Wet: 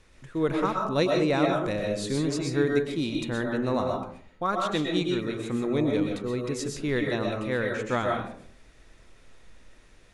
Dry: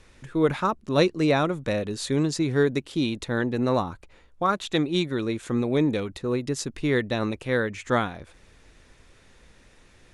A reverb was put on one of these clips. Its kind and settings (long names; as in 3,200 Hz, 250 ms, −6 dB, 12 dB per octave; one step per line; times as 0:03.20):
comb and all-pass reverb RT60 0.53 s, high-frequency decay 0.4×, pre-delay 85 ms, DRR 0.5 dB
level −4.5 dB